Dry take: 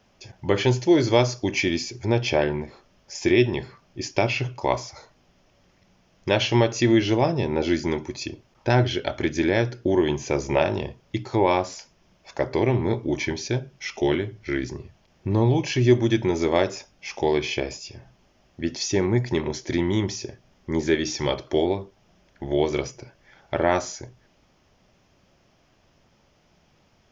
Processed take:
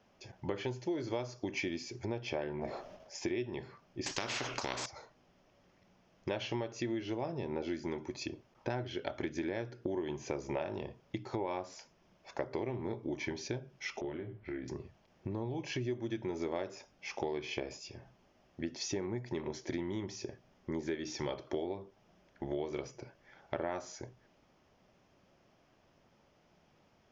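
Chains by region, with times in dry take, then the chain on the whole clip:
2.59–3.14 transient shaper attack -5 dB, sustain +11 dB + bell 650 Hz +12.5 dB 0.51 oct
4.06–4.86 careless resampling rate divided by 3×, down none, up filtered + spectral compressor 4:1
14.01–14.68 air absorption 370 m + compressor 4:1, threshold -33 dBFS + doubler 26 ms -6 dB
whole clip: high shelf 2300 Hz -7.5 dB; compressor 6:1, threshold -29 dBFS; low shelf 120 Hz -9.5 dB; gain -3.5 dB

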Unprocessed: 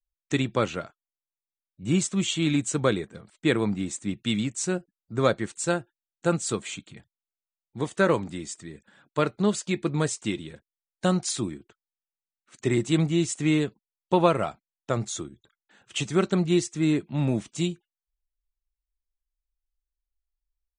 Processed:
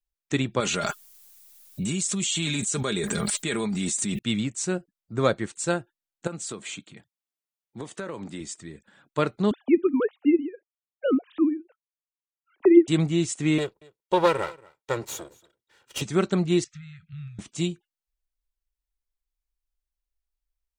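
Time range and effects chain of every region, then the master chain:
0.6–4.19 pre-emphasis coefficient 0.8 + comb 4.9 ms, depth 55% + fast leveller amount 100%
6.27–8.41 HPF 140 Hz + compressor 8:1, threshold -30 dBFS
9.51–12.88 sine-wave speech + tilt shelf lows +7.5 dB, about 1200 Hz
13.58–16.02 minimum comb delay 2.1 ms + HPF 230 Hz 6 dB/oct + echo 0.233 s -24 dB
16.64–17.39 compressor, threshold -33 dBFS + brick-wall FIR band-stop 180–1200 Hz + air absorption 180 m
whole clip: dry

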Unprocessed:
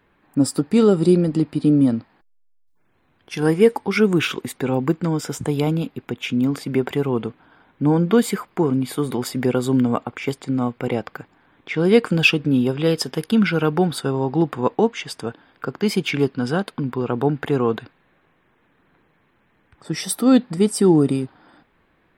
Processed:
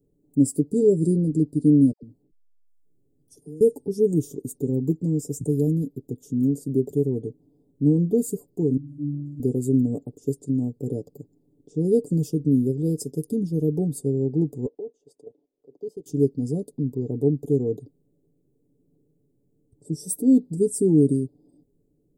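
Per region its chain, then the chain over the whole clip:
1.92–3.61 compressor 5:1, threshold -34 dBFS + dispersion lows, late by 0.109 s, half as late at 890 Hz
8.77–9.4 bell 430 Hz -14 dB 0.22 oct + octave resonator D, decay 0.36 s + flutter echo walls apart 9.5 m, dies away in 1.3 s
14.66–16.06 three-band isolator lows -22 dB, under 370 Hz, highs -22 dB, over 3500 Hz + level quantiser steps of 14 dB
whole clip: elliptic band-stop 430–7200 Hz, stop band 80 dB; comb 7 ms, depth 57%; gain -3.5 dB

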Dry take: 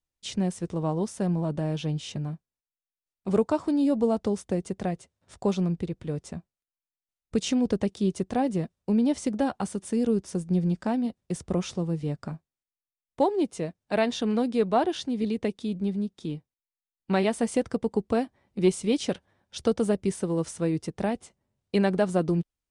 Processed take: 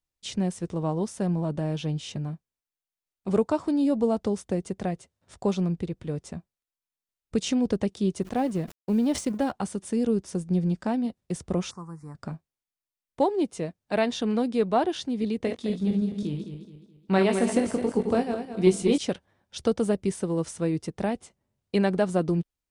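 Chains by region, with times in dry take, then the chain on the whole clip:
8.22–9.52 G.711 law mismatch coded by A + sustainer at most 140 dB/s
11.71–12.15 Butterworth band-stop 3100 Hz, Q 0.58 + resonant low shelf 780 Hz -11 dB, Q 3
15.38–18.98 regenerating reverse delay 0.106 s, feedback 60%, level -5.5 dB + doubler 21 ms -8 dB
whole clip: dry

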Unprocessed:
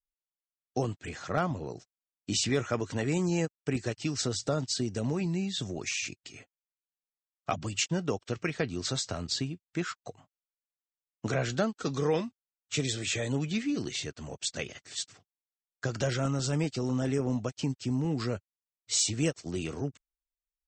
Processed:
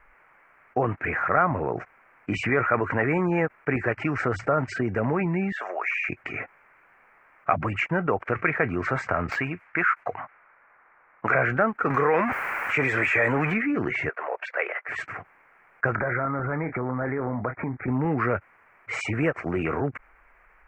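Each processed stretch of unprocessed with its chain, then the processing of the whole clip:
5.52–6.09 HPF 610 Hz 24 dB/oct + compressor 1.5:1, threshold -40 dBFS
9.31–11.35 low-pass opened by the level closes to 1300 Hz, open at -33 dBFS + tilt shelf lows -6.5 dB, about 720 Hz + overloaded stage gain 21 dB
11.9–13.54 zero-crossing step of -39 dBFS + tilt +2 dB/oct + fast leveller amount 50%
14.09–14.89 gate -57 dBFS, range -9 dB + inverse Chebyshev high-pass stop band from 220 Hz + air absorption 190 m
15.95–17.88 steep low-pass 2300 Hz 96 dB/oct + doubler 25 ms -13 dB + compressor 4:1, threshold -35 dBFS
whole clip: EQ curve 240 Hz 0 dB, 1400 Hz +14 dB, 2300 Hz +10 dB, 3600 Hz -29 dB; fast leveller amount 50%; gain -2.5 dB

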